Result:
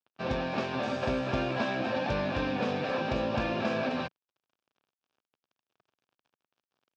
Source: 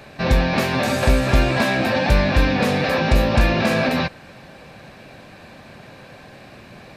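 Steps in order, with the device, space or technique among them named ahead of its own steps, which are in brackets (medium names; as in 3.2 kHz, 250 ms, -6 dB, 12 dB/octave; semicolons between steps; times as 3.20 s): blown loudspeaker (crossover distortion -34 dBFS; cabinet simulation 130–5000 Hz, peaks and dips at 170 Hz -6 dB, 2 kHz -10 dB, 4.2 kHz -7 dB); trim -8.5 dB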